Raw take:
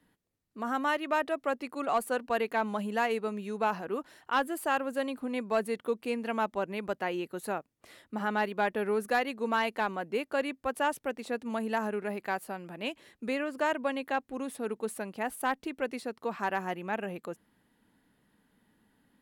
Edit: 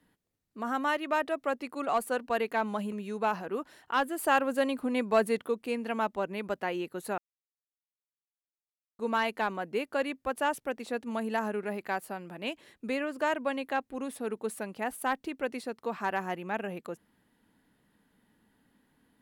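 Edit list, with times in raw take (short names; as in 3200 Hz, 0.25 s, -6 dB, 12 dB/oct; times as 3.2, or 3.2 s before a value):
2.92–3.31 cut
4.58–5.86 gain +4 dB
7.57–9.38 mute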